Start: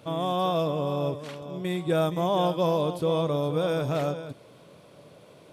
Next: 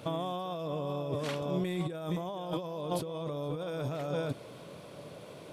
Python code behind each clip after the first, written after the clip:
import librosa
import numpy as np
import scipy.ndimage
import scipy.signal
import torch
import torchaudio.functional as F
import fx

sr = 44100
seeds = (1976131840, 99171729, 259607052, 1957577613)

y = fx.over_compress(x, sr, threshold_db=-33.0, ratio=-1.0)
y = y * librosa.db_to_amplitude(-2.0)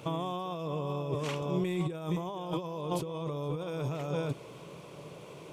y = fx.ripple_eq(x, sr, per_octave=0.73, db=6)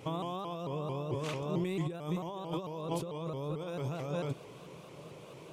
y = fx.vibrato_shape(x, sr, shape='saw_up', rate_hz=4.5, depth_cents=160.0)
y = y * librosa.db_to_amplitude(-2.5)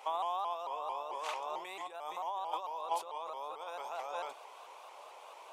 y = fx.ladder_highpass(x, sr, hz=730.0, resonance_pct=60)
y = y * librosa.db_to_amplitude(9.5)